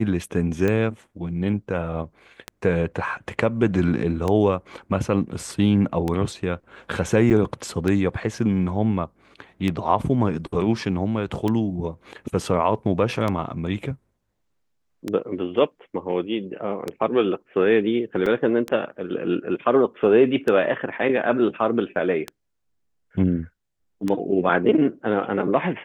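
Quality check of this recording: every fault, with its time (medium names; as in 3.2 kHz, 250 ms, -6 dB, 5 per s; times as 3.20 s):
tick 33 1/3 rpm -12 dBFS
7.30–7.31 s: dropout 7.6 ms
18.26 s: dropout 4.2 ms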